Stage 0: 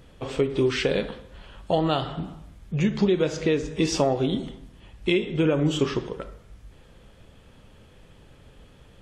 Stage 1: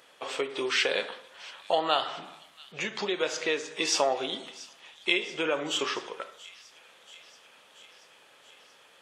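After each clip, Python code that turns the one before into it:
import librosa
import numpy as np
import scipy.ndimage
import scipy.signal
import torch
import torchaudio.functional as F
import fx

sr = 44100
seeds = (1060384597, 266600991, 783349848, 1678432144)

y = scipy.signal.sosfilt(scipy.signal.butter(2, 770.0, 'highpass', fs=sr, output='sos'), x)
y = fx.echo_wet_highpass(y, sr, ms=682, feedback_pct=68, hz=2500.0, wet_db=-18.0)
y = y * 10.0 ** (3.0 / 20.0)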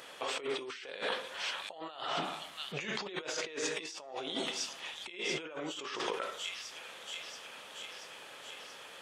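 y = fx.over_compress(x, sr, threshold_db=-40.0, ratio=-1.0)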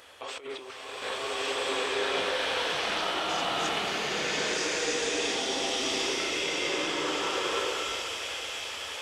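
y = fx.low_shelf_res(x, sr, hz=110.0, db=9.0, q=3.0)
y = fx.rev_bloom(y, sr, seeds[0], attack_ms=1460, drr_db=-11.5)
y = y * 10.0 ** (-2.0 / 20.0)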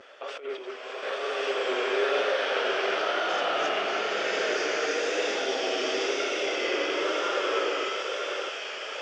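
y = fx.reverse_delay(x, sr, ms=607, wet_db=-7)
y = fx.vibrato(y, sr, rate_hz=1.0, depth_cents=67.0)
y = fx.cabinet(y, sr, low_hz=330.0, low_slope=12, high_hz=5600.0, hz=(400.0, 600.0, 960.0, 1400.0, 4000.0), db=(6, 8, -5, 6, -9))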